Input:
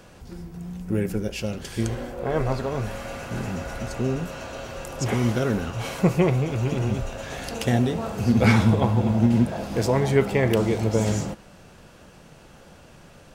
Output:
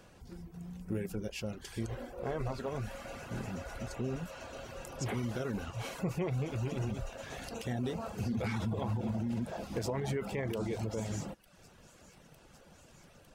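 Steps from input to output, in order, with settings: thin delay 0.904 s, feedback 83%, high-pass 4900 Hz, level -18.5 dB; limiter -16.5 dBFS, peak gain reduction 10.5 dB; reverb removal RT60 0.6 s; gain -8.5 dB

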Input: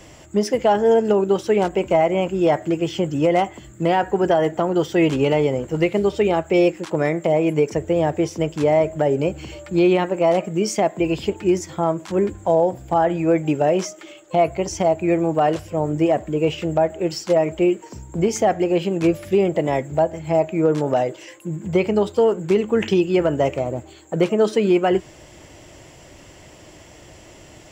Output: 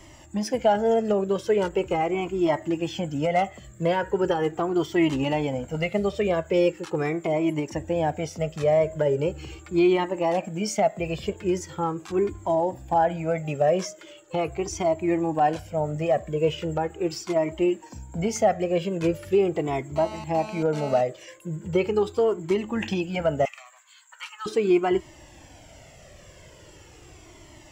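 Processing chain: 19.96–21.01 GSM buzz -33 dBFS; 23.45–24.46 steep high-pass 980 Hz 48 dB/oct; cascading flanger falling 0.4 Hz

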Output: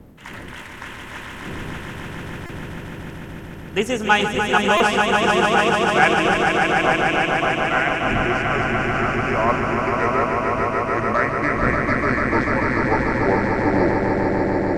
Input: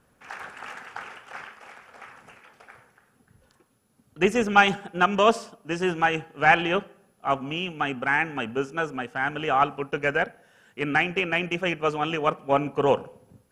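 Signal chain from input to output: speed glide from 119% -> 64%; wind noise 270 Hz -36 dBFS; high shelf 3900 Hz +5.5 dB; on a send: swelling echo 0.147 s, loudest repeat 5, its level -5 dB; on the sum: stuck buffer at 2.46/4.77, samples 128, times 10

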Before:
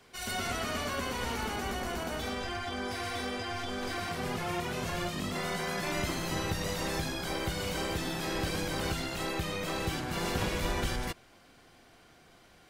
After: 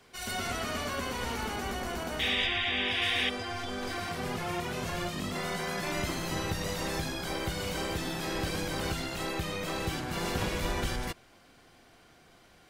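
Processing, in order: 2.19–3.3 painted sound noise 1700–3800 Hz -30 dBFS; 2.46–3.02 high shelf 6900 Hz -11 dB

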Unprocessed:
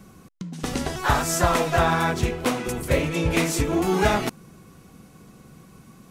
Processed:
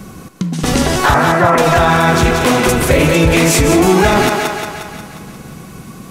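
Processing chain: 1.14–1.58 elliptic band-pass 110–2100 Hz; thinning echo 0.178 s, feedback 60%, high-pass 310 Hz, level -8 dB; maximiser +16.5 dB; gain -1 dB

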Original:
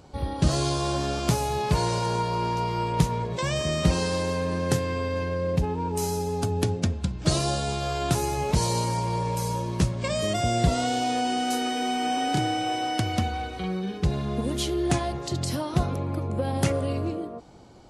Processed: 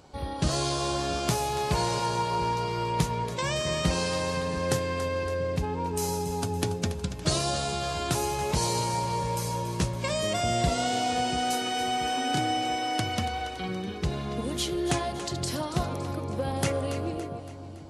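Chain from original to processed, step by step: low shelf 400 Hz -6 dB; on a send: split-band echo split 350 Hz, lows 0.684 s, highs 0.282 s, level -11.5 dB

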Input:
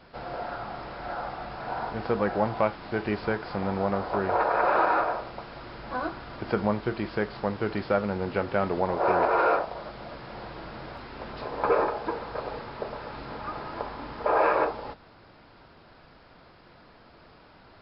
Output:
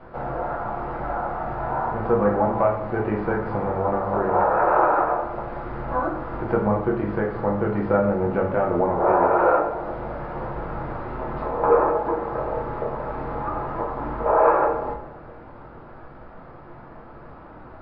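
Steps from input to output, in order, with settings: Chebyshev low-pass 1200 Hz, order 2; in parallel at +2.5 dB: compressor, threshold -39 dBFS, peak gain reduction 18.5 dB; on the sum: split-band echo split 490 Hz, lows 0.217 s, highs 92 ms, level -14 dB; shoebox room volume 60 m³, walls mixed, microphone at 0.72 m

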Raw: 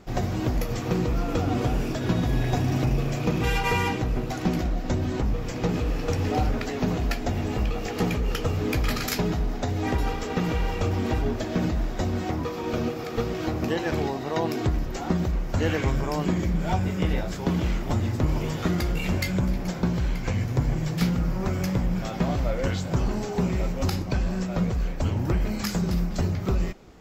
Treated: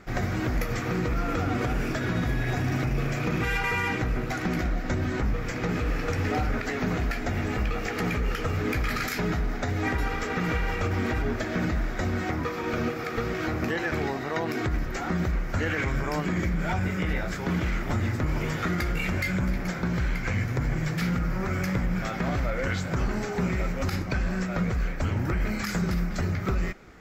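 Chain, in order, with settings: band shelf 1700 Hz +8.5 dB 1.1 oct; limiter -17 dBFS, peak gain reduction 8.5 dB; gain -1 dB

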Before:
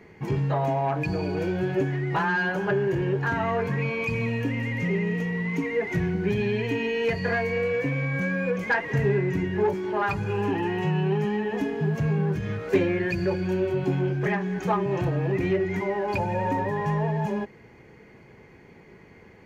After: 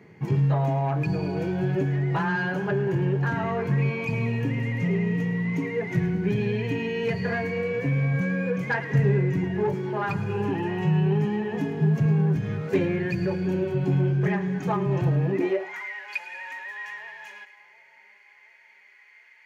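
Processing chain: split-band echo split 960 Hz, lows 0.723 s, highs 0.108 s, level -14 dB; high-pass sweep 130 Hz -> 2000 Hz, 15.21–15.89; gain -3 dB

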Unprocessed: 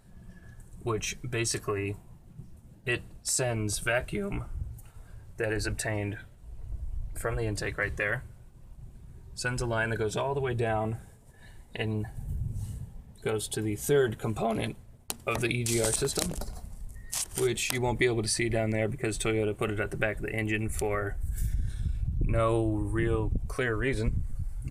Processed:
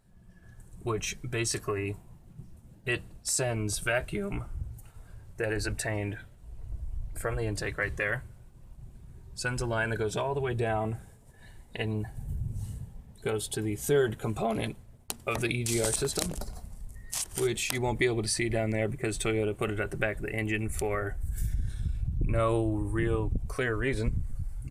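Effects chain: AGC gain up to 7 dB; gain -7.5 dB

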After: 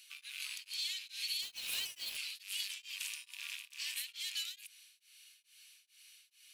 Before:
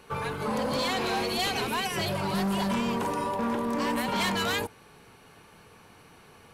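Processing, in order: rattling part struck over -39 dBFS, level -28 dBFS; inverse Chebyshev high-pass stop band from 640 Hz, stop band 70 dB; compressor 12:1, threshold -38 dBFS, peak gain reduction 10 dB; 1.42–2.17 companded quantiser 4-bit; beating tremolo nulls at 2.3 Hz; gain +4 dB

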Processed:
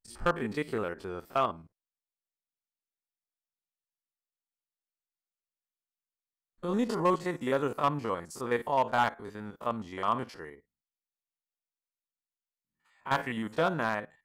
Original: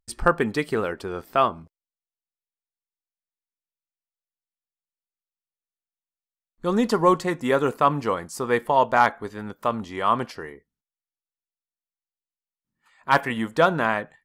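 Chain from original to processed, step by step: stepped spectrum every 50 ms; hard clip -11.5 dBFS, distortion -18 dB; gain -6.5 dB

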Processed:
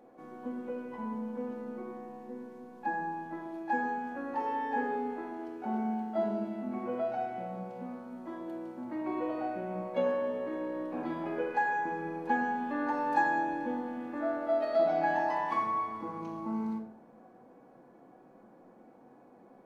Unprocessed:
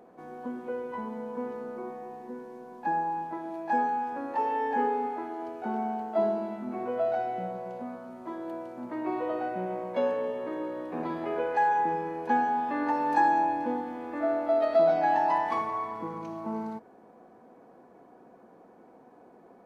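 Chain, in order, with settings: shoebox room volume 990 m³, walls furnished, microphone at 2.3 m; gain -5.5 dB

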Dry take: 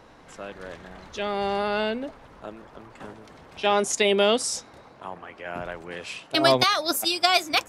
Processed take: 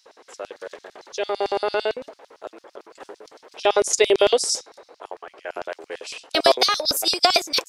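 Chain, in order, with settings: tone controls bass -10 dB, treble 0 dB; LFO high-pass square 8.9 Hz 420–5000 Hz; gain +1.5 dB

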